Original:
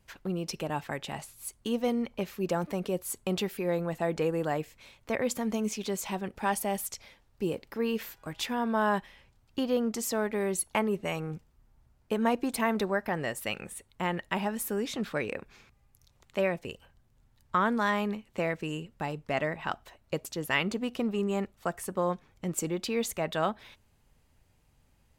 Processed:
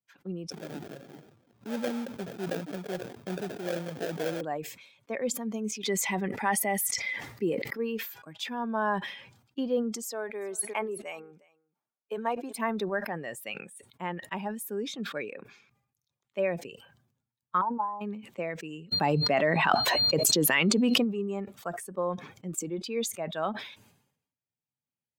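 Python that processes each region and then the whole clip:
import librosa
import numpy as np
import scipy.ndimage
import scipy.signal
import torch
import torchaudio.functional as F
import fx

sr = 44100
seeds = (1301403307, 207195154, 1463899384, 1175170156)

y = fx.chain(x, sr, fx.cheby1_lowpass(hz=2600.0, order=6),
    fx.sample_hold(seeds[0], rate_hz=1100.0, jitter_pct=20),
    fx.pre_swell(db_per_s=84.0), at=(0.5, 4.41))
y = fx.chain(y, sr, fx.peak_eq(hz=2000.0, db=13.0, octaves=0.2),
    fx.env_flatten(amount_pct=70), at=(5.83, 7.73))
y = fx.chain(y, sr, fx.bessel_highpass(hz=380.0, order=2),
    fx.echo_single(ms=361, db=-17.0), at=(10.05, 12.56))
y = fx.chain(y, sr, fx.ladder_lowpass(hz=960.0, resonance_pct=80),
    fx.transient(attack_db=9, sustain_db=3), at=(17.61, 18.01))
y = fx.dmg_tone(y, sr, hz=4200.0, level_db=-62.0, at=(18.91, 21.03), fade=0.02)
y = fx.env_flatten(y, sr, amount_pct=100, at=(18.91, 21.03), fade=0.02)
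y = fx.bin_expand(y, sr, power=1.5)
y = scipy.signal.sosfilt(scipy.signal.butter(4, 150.0, 'highpass', fs=sr, output='sos'), y)
y = fx.sustainer(y, sr, db_per_s=77.0)
y = y * 10.0 ** (1.5 / 20.0)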